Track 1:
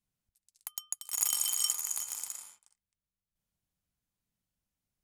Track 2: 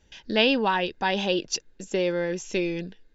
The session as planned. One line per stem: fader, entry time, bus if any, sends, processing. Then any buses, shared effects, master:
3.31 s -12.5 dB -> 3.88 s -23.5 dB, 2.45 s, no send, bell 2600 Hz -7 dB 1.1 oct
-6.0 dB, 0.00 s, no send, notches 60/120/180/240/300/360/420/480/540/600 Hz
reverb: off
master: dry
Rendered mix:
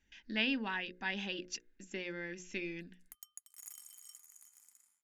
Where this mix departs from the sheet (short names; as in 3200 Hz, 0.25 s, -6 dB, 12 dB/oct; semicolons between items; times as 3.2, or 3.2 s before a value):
stem 2 -6.0 dB -> -12.5 dB; master: extra graphic EQ 125/250/500/1000/2000/4000 Hz -8/+7/-10/-5/+9/-4 dB